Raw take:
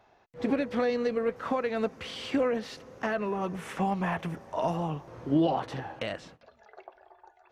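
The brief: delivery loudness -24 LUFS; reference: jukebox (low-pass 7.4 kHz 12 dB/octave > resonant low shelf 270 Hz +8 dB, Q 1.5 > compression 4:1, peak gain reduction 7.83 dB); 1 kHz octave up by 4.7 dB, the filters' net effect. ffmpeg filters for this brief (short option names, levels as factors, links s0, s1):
-af "lowpass=7400,lowshelf=f=270:t=q:w=1.5:g=8,equalizer=f=1000:t=o:g=7,acompressor=threshold=0.0631:ratio=4,volume=2"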